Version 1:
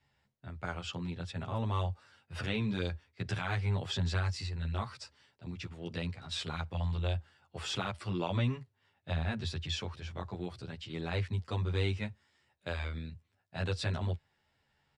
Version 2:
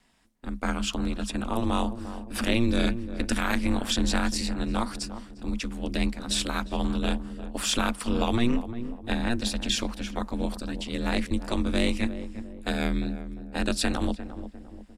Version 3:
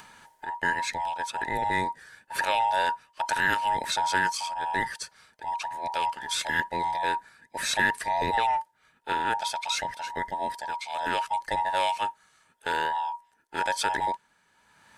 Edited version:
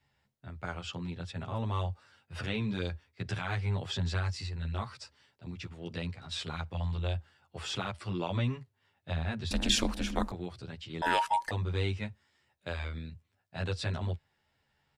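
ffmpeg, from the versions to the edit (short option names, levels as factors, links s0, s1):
-filter_complex "[0:a]asplit=3[s0][s1][s2];[s0]atrim=end=9.512[s3];[1:a]atrim=start=9.508:end=10.322[s4];[s1]atrim=start=10.318:end=11.022[s5];[2:a]atrim=start=11.018:end=11.512[s6];[s2]atrim=start=11.508[s7];[s3][s4]acrossfade=d=0.004:c1=hsin:c2=hsin[s8];[s8][s5]acrossfade=d=0.004:c1=hsin:c2=hsin[s9];[s9][s6]acrossfade=d=0.004:c1=hsin:c2=hsin[s10];[s10][s7]acrossfade=d=0.004:c1=hsin:c2=hsin"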